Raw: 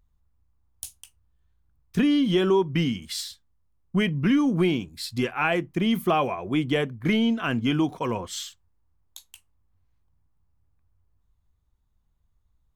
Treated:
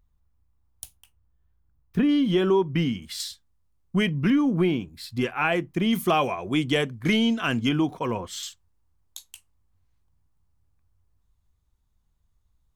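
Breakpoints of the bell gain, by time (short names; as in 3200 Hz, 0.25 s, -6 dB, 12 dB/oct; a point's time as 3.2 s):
bell 7100 Hz 2.2 oct
-2.5 dB
from 0.84 s -13.5 dB
from 2.09 s -4.5 dB
from 3.2 s +3 dB
from 4.3 s -7.5 dB
from 5.21 s +0.5 dB
from 5.93 s +8.5 dB
from 7.69 s -2.5 dB
from 8.43 s +4.5 dB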